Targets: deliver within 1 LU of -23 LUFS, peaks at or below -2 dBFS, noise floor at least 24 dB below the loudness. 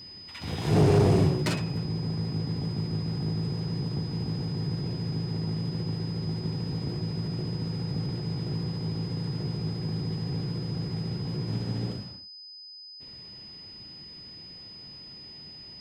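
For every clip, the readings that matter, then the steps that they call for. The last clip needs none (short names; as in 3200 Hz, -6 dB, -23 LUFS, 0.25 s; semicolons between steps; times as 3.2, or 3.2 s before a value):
clipped 0.3%; flat tops at -15.5 dBFS; steady tone 5000 Hz; tone level -43 dBFS; loudness -29.5 LUFS; peak -15.5 dBFS; loudness target -23.0 LUFS
-> clip repair -15.5 dBFS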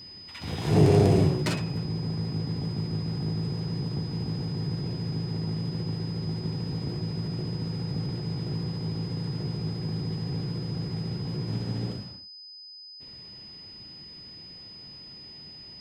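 clipped 0.0%; steady tone 5000 Hz; tone level -43 dBFS
-> notch 5000 Hz, Q 30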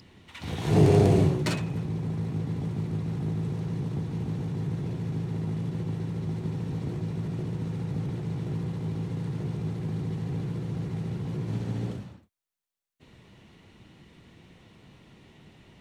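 steady tone none; loudness -29.5 LUFS; peak -9.0 dBFS; loudness target -23.0 LUFS
-> gain +6.5 dB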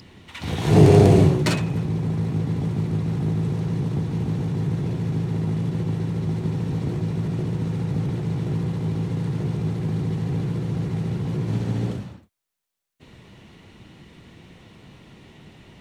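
loudness -23.0 LUFS; peak -2.5 dBFS; noise floor -52 dBFS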